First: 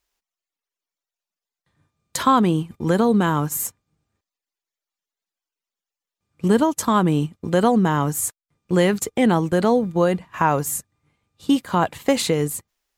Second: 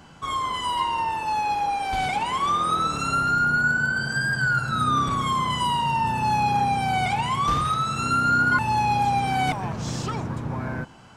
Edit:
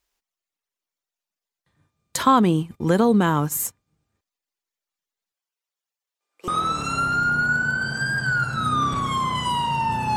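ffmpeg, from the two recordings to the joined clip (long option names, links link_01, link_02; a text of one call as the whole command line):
ffmpeg -i cue0.wav -i cue1.wav -filter_complex "[0:a]asettb=1/sr,asplit=3[link_01][link_02][link_03];[link_01]atrim=end=5.324[link_04];[link_02]atrim=start=5.32:end=6.48,asetpts=PTS-STARTPTS,afade=type=in:duration=0.004:curve=qsin,afade=type=out:start_time=1.156:duration=0.004:curve=qsin,highpass=frequency=440:width=0.5412,highpass=frequency=440:width=1.3066[link_05];[link_03]atrim=start=6.476[link_06];[link_04][link_05]acrossfade=duration=0.004:curve1=hsin:curve2=qsin[link_07];[link_07][link_06]acrossfade=duration=0.004:curve1=qsin:curve2=hsin,apad=whole_dur=10.16,atrim=end=10.16,atrim=end=6.482[link_08];[1:a]atrim=start=2.628:end=6.31[link_09];[link_08][link_09]acrossfade=duration=0.004:curve1=hsin:curve2=hsin" out.wav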